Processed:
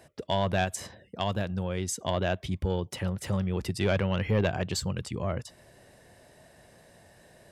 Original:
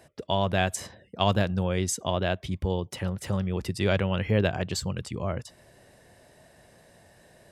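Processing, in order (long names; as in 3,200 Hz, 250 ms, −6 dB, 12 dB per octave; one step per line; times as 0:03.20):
0:00.64–0:02.08: downward compressor 1.5 to 1, threshold −33 dBFS, peak gain reduction 6 dB
soft clipping −15.5 dBFS, distortion −17 dB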